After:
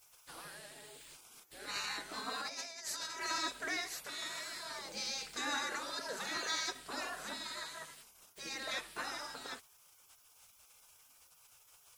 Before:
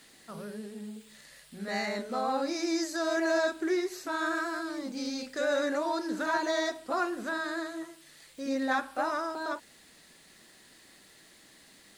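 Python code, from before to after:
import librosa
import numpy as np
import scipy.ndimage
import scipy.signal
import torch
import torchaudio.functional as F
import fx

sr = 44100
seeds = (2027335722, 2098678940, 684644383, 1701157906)

y = fx.spec_gate(x, sr, threshold_db=-15, keep='weak')
y = fx.over_compress(y, sr, threshold_db=-44.0, ratio=-0.5, at=(2.31, 3.2), fade=0.02)
y = y * librosa.db_to_amplitude(3.0)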